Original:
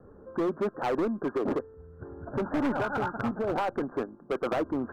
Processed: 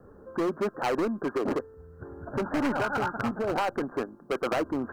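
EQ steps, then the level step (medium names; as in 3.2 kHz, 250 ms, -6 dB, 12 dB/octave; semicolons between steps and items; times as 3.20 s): treble shelf 2.1 kHz +9.5 dB; band-stop 3.5 kHz, Q 8.2; 0.0 dB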